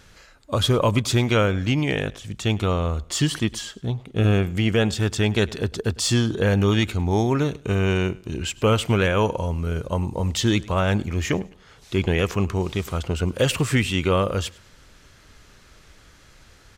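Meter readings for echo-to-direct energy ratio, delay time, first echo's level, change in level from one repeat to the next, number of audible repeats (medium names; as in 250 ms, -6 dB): -21.5 dB, 103 ms, -22.0 dB, -11.0 dB, 2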